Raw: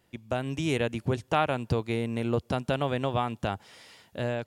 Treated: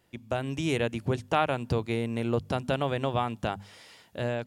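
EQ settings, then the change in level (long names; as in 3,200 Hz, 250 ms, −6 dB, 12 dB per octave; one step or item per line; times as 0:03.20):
mains-hum notches 50/100/150/200/250 Hz
0.0 dB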